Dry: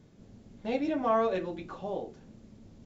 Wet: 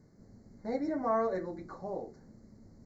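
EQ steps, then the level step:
elliptic band-stop filter 2,100–4,200 Hz, stop band 40 dB
−3.0 dB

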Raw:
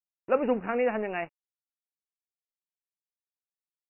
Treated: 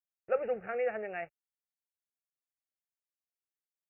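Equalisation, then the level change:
high-pass filter 45 Hz
phaser with its sweep stopped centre 1,000 Hz, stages 6
−4.5 dB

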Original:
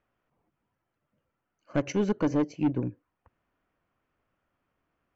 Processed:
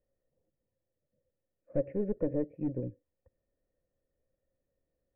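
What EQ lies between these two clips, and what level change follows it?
formant resonators in series e
high-frequency loss of the air 410 metres
spectral tilt −4 dB per octave
+2.5 dB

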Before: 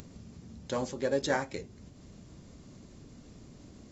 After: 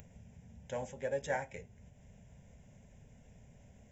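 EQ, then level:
phaser with its sweep stopped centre 1,200 Hz, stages 6
−3.5 dB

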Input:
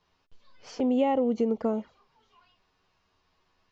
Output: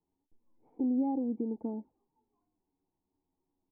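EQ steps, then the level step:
formant resonators in series u
notch filter 590 Hz, Q 12
+1.5 dB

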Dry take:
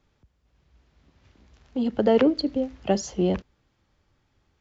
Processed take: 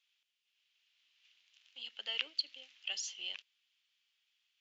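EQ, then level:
high-pass with resonance 2,900 Hz, resonance Q 3.7
−7.0 dB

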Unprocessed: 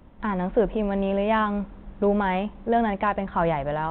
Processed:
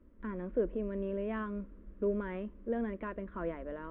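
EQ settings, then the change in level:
low-pass filter 1,400 Hz 12 dB per octave
phaser with its sweep stopped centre 330 Hz, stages 4
−7.5 dB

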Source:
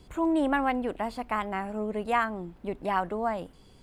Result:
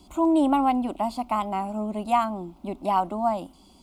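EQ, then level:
high-pass filter 80 Hz 6 dB per octave
phaser with its sweep stopped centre 460 Hz, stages 6
+6.5 dB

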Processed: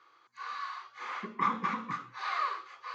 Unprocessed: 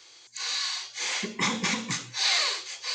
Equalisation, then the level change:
high-pass filter 220 Hz 12 dB per octave
low-pass with resonance 1,200 Hz, resonance Q 7.4
parametric band 690 Hz −11 dB 2.8 octaves
0.0 dB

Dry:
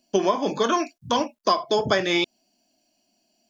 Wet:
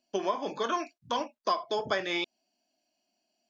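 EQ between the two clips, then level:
low-shelf EQ 320 Hz −11.5 dB
high-shelf EQ 5,800 Hz −11.5 dB
−5.5 dB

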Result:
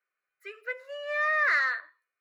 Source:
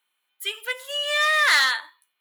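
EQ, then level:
high-frequency loss of the air 260 metres
phaser with its sweep stopped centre 890 Hz, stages 6
−2.0 dB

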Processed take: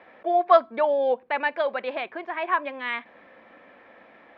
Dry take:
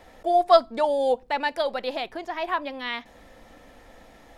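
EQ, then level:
loudspeaker in its box 190–3,300 Hz, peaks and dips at 210 Hz +3 dB, 370 Hz +4 dB, 580 Hz +5 dB, 1,100 Hz +8 dB, 1,600 Hz +8 dB, 2,300 Hz +8 dB
−4.0 dB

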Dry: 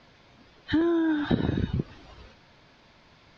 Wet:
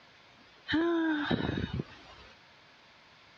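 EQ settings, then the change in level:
high-pass filter 59 Hz
tilt shelving filter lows −5.5 dB, about 700 Hz
high-shelf EQ 4,700 Hz −5.5 dB
−2.0 dB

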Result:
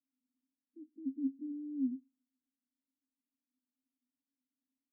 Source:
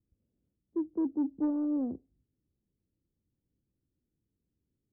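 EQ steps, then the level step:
flat-topped band-pass 260 Hz, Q 8
+1.0 dB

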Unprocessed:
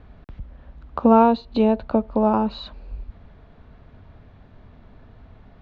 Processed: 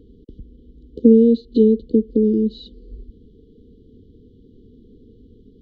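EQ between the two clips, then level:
flat-topped bell 540 Hz +11.5 dB 2.9 octaves
dynamic equaliser 850 Hz, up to −4 dB, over −18 dBFS, Q 0.71
linear-phase brick-wall band-stop 500–2,900 Hz
−3.5 dB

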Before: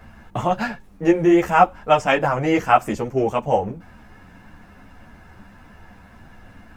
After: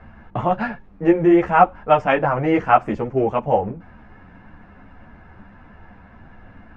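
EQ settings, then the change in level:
low-pass filter 2,200 Hz 12 dB per octave
+1.0 dB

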